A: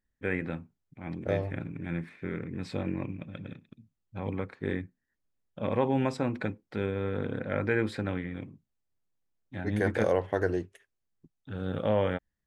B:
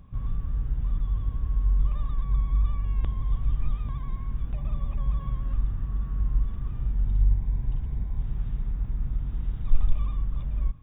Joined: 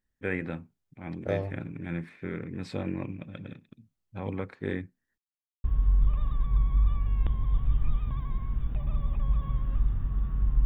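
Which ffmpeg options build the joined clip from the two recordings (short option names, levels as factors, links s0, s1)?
-filter_complex "[0:a]apad=whole_dur=10.65,atrim=end=10.65,asplit=2[s0][s1];[s0]atrim=end=5.18,asetpts=PTS-STARTPTS,afade=t=out:st=5.176:d=0.004:c=hsin[s2];[s1]atrim=start=5.18:end=5.64,asetpts=PTS-STARTPTS,volume=0[s3];[1:a]atrim=start=1.42:end=6.43,asetpts=PTS-STARTPTS,afade=t=in:d=0.004:c=hsin[s4];[s2][s3][s4]concat=n=3:v=0:a=1"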